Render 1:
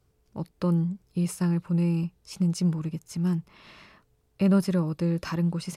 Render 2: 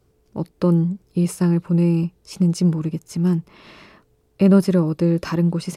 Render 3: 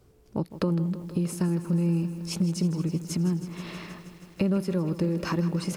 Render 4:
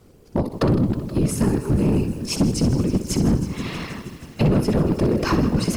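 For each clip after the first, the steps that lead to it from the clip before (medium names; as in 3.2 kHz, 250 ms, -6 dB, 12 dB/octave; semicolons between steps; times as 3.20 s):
peaking EQ 360 Hz +6.5 dB 1.6 oct; trim +4.5 dB
compression 4:1, threshold -28 dBFS, peak gain reduction 15.5 dB; bit-crushed delay 159 ms, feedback 80%, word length 9-bit, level -13.5 dB; trim +2.5 dB
flutter echo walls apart 10.6 m, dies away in 0.4 s; whisper effect; overload inside the chain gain 21 dB; trim +8 dB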